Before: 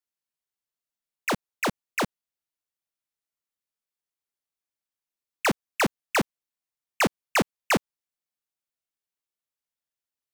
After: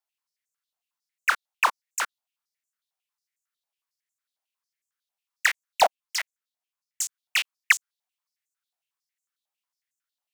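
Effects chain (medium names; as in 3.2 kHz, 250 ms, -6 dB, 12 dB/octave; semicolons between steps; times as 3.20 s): 5.84–7.01 s: ring modulator 420 Hz; step-sequenced high-pass 11 Hz 750–7000 Hz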